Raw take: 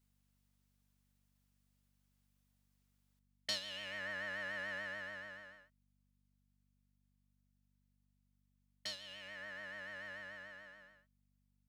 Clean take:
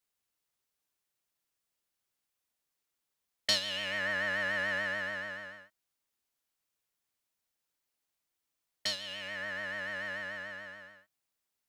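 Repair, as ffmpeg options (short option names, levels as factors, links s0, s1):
-af "bandreject=f=48.6:t=h:w=4,bandreject=f=97.2:t=h:w=4,bandreject=f=145.8:t=h:w=4,bandreject=f=194.4:t=h:w=4,bandreject=f=243:t=h:w=4,asetnsamples=n=441:p=0,asendcmd='3.19 volume volume 10dB',volume=1"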